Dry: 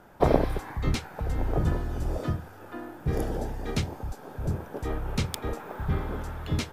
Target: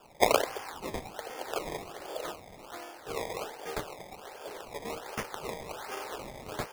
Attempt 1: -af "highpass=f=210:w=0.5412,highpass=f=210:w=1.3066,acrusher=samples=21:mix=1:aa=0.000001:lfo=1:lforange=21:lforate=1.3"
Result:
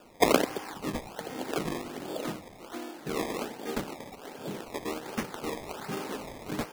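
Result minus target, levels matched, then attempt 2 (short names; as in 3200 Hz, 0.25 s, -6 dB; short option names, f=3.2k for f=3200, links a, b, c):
250 Hz band +8.0 dB
-af "highpass=f=450:w=0.5412,highpass=f=450:w=1.3066,acrusher=samples=21:mix=1:aa=0.000001:lfo=1:lforange=21:lforate=1.3"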